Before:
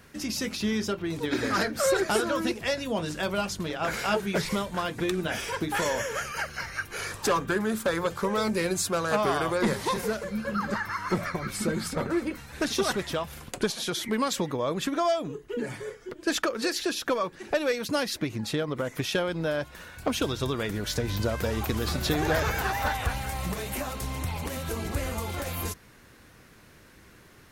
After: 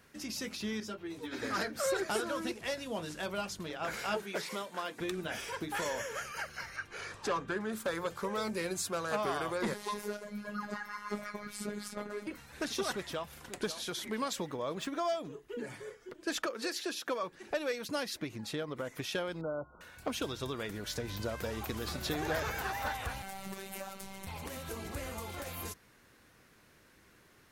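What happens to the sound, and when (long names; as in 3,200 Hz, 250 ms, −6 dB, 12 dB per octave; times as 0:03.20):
0:00.80–0:01.42: string-ensemble chorus
0:02.26–0:03.26: variable-slope delta modulation 64 kbit/s
0:04.22–0:05.00: high-pass filter 270 Hz
0:06.76–0:07.73: high-frequency loss of the air 65 metres
0:09.74–0:12.27: phases set to zero 207 Hz
0:12.90–0:13.53: delay throw 540 ms, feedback 55%, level −10.5 dB
0:14.41–0:15.17: running median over 3 samples
0:16.46–0:17.23: high-pass filter 180 Hz
0:19.41–0:19.81: linear-phase brick-wall low-pass 1,500 Hz
0:23.22–0:24.27: phases set to zero 193 Hz
whole clip: low-shelf EQ 190 Hz −5.5 dB; level −7.5 dB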